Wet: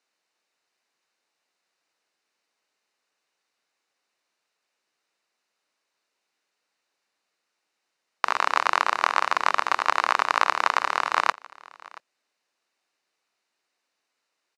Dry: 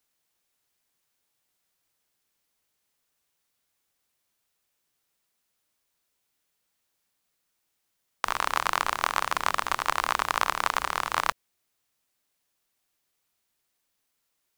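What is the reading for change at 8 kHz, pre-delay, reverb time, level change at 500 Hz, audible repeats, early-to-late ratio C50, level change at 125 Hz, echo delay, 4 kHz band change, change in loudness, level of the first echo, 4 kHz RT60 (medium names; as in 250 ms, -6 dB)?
-3.5 dB, no reverb, no reverb, +4.0 dB, 1, no reverb, under -10 dB, 679 ms, +1.5 dB, +4.0 dB, -22.5 dB, no reverb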